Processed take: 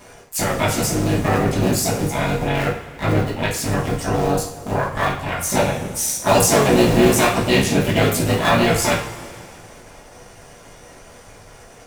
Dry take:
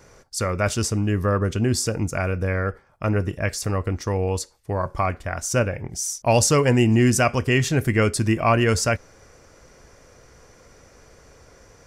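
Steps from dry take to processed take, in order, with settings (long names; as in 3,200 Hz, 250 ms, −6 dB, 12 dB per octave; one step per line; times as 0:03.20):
sub-harmonics by changed cycles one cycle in 3, muted
in parallel at −1 dB: downward compressor 12 to 1, threshold −33 dBFS, peak gain reduction 19.5 dB
on the sum: pitch-shifted copies added +7 semitones −2 dB
coupled-rooms reverb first 0.4 s, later 2.4 s, from −17 dB, DRR −4 dB
level −3.5 dB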